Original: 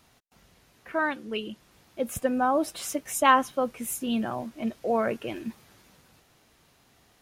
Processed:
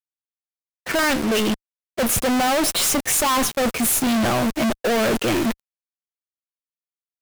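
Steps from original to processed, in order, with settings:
fuzz pedal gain 42 dB, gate −45 dBFS
leveller curve on the samples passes 5
downward expander −17 dBFS
level −7.5 dB

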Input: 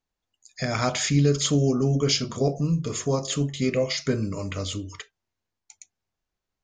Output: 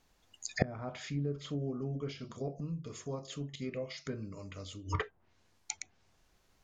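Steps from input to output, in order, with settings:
gate with flip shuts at −24 dBFS, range −30 dB
treble cut that deepens with the level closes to 980 Hz, closed at −45 dBFS
level +15 dB

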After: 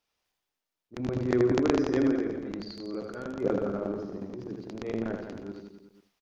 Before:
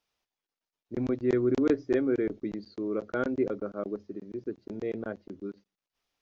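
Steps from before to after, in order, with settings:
0:02.04–0:03.37: downward compressor 6 to 1, threshold −34 dBFS, peak gain reduction 11 dB
transient designer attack −11 dB, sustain +10 dB
reverse bouncing-ball delay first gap 80 ms, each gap 1.1×, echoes 5

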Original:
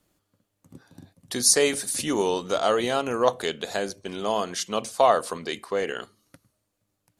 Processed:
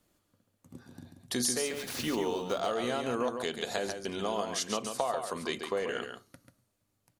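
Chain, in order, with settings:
0:01.61–0:02.61: running median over 5 samples
downward compressor 12 to 1, threshold −26 dBFS, peak gain reduction 13.5 dB
single-tap delay 139 ms −6.5 dB
convolution reverb RT60 0.30 s, pre-delay 4 ms, DRR 14 dB
level −2 dB

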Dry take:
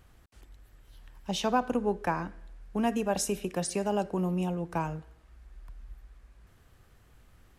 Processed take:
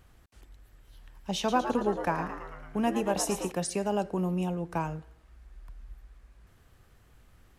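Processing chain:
0:01.37–0:03.52: echo with shifted repeats 111 ms, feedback 59%, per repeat +110 Hz, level −9 dB

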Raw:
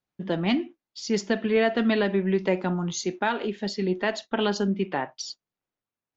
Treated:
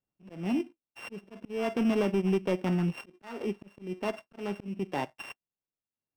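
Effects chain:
samples sorted by size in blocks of 16 samples
low-pass filter 1,000 Hz 6 dB per octave
downward compressor 1.5 to 1, threshold −35 dBFS, peak gain reduction 6 dB
volume swells 304 ms
leveller curve on the samples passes 1
transient designer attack −4 dB, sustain −8 dB
level +1.5 dB

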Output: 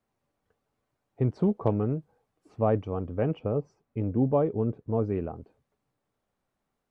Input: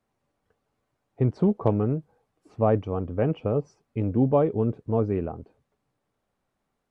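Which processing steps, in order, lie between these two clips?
0:03.39–0:05.03: high-shelf EQ 2,700 Hz −8.5 dB
level −3 dB

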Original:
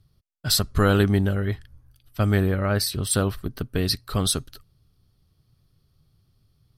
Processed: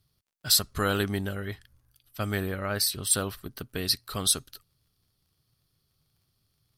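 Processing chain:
spectral tilt +2 dB per octave
surface crackle 45 per second −56 dBFS
level −5 dB

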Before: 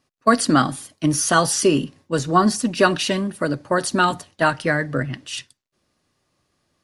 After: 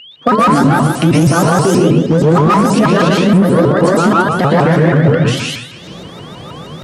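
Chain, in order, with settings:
camcorder AGC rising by 69 dB per second
high-shelf EQ 5,700 Hz −5 dB
steady tone 3,300 Hz −29 dBFS
tilt shelving filter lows +5.5 dB, about 1,400 Hz
tuned comb filter 160 Hz, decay 0.45 s, harmonics odd, mix 80%
dense smooth reverb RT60 0.83 s, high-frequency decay 0.6×, pre-delay 105 ms, DRR −4 dB
asymmetric clip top −15.5 dBFS
high-pass filter 72 Hz
on a send: echo through a band-pass that steps 144 ms, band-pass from 670 Hz, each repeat 1.4 octaves, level −10.5 dB
on the sum: boost into a limiter +13 dB
pitch modulation by a square or saw wave saw up 6.3 Hz, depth 250 cents
level −1 dB

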